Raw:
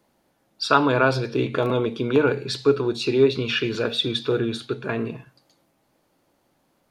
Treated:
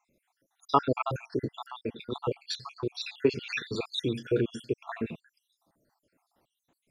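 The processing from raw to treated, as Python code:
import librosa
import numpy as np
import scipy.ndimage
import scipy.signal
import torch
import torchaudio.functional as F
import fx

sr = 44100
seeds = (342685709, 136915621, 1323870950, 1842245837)

y = fx.spec_dropout(x, sr, seeds[0], share_pct=69)
y = fx.tremolo_shape(y, sr, shape='saw_down', hz=8.5, depth_pct=45, at=(1.18, 3.25))
y = F.gain(torch.from_numpy(y), -2.5).numpy()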